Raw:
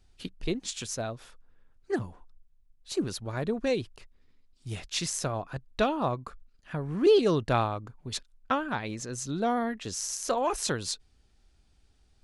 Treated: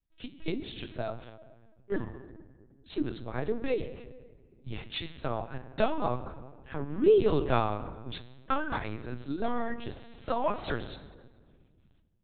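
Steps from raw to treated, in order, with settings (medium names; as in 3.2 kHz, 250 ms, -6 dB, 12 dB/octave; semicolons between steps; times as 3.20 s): comb of notches 180 Hz; gate with hold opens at -55 dBFS; on a send at -10 dB: reverberation RT60 1.6 s, pre-delay 3 ms; on the sum: LPC vocoder at 8 kHz pitch kept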